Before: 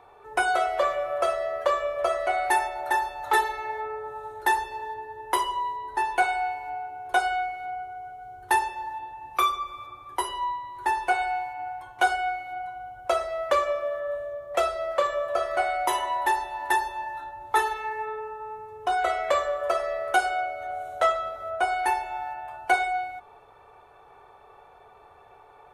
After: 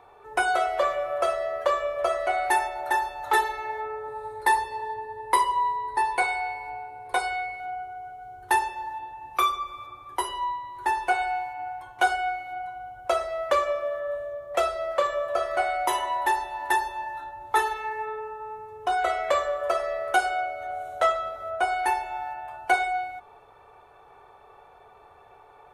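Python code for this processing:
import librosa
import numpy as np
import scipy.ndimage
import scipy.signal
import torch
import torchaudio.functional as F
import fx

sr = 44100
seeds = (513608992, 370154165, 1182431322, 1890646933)

y = fx.ripple_eq(x, sr, per_octave=0.94, db=9, at=(4.08, 7.6))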